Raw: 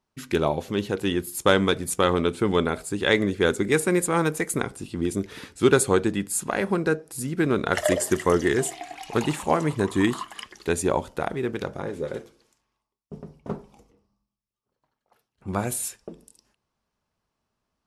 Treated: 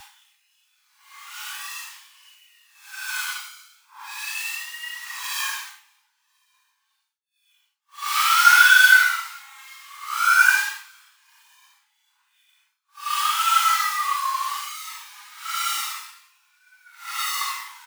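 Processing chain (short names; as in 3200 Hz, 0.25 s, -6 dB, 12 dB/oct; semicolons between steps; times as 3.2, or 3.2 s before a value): sine-wave speech; comb 2 ms, depth 53%; companded quantiser 4-bit; soft clip -6.5 dBFS, distortion -18 dB; Paulstretch 9.4×, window 0.05 s, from 0.6; brick-wall FIR high-pass 790 Hz; three-band expander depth 70%; gain +4 dB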